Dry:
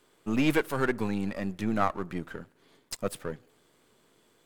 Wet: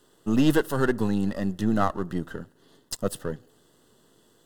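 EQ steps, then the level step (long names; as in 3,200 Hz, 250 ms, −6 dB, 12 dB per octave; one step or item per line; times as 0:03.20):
Butterworth band-reject 2,300 Hz, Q 3.4
tilt shelving filter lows +4.5 dB, about 650 Hz
high-shelf EQ 2,100 Hz +7.5 dB
+2.0 dB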